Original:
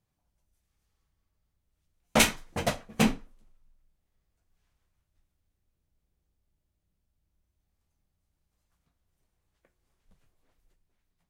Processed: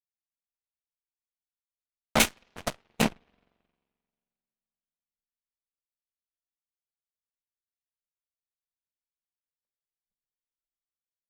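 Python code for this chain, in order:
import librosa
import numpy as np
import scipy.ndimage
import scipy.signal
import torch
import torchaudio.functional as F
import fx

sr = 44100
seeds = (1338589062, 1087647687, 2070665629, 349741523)

y = fx.rev_spring(x, sr, rt60_s=3.6, pass_ms=(44,), chirp_ms=25, drr_db=12.5)
y = fx.cheby_harmonics(y, sr, harmonics=(2, 4, 7, 8), levels_db=(-12, -18, -17, -31), full_scale_db=-8.0)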